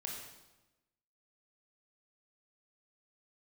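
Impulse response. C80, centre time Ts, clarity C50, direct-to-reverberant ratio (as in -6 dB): 4.5 dB, 54 ms, 2.5 dB, -1.5 dB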